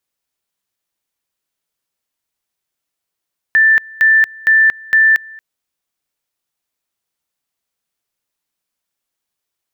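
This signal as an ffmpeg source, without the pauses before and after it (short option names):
-f lavfi -i "aevalsrc='pow(10,(-6.5-25*gte(mod(t,0.46),0.23))/20)*sin(2*PI*1770*t)':d=1.84:s=44100"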